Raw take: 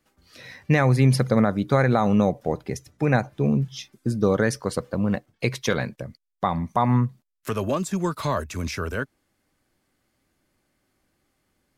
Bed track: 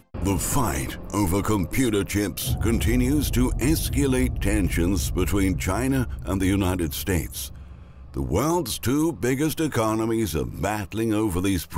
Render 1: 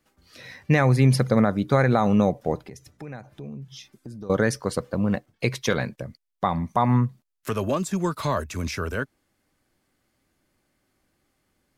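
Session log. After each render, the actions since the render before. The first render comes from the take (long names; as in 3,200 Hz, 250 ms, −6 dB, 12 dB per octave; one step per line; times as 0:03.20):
0:02.62–0:04.30: downward compressor 3 to 1, threshold −40 dBFS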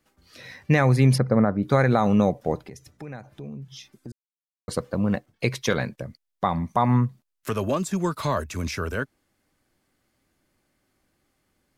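0:01.18–0:01.63: moving average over 13 samples
0:04.12–0:04.68: silence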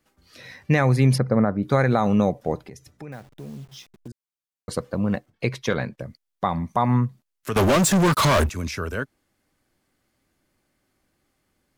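0:03.12–0:04.08: hold until the input has moved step −47.5 dBFS
0:05.30–0:06.00: high-shelf EQ 5,100 Hz −9 dB
0:07.56–0:08.50: leveller curve on the samples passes 5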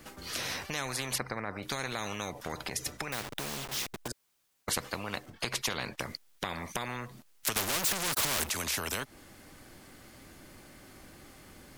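downward compressor 3 to 1, threshold −30 dBFS, peak gain reduction 12.5 dB
every bin compressed towards the loudest bin 4 to 1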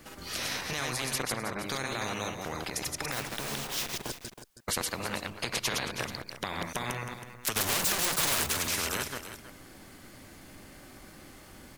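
delay that plays each chunk backwards 102 ms, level −2 dB
on a send: single-tap delay 321 ms −11.5 dB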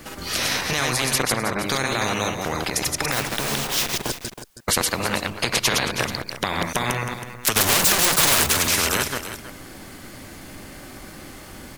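level +10.5 dB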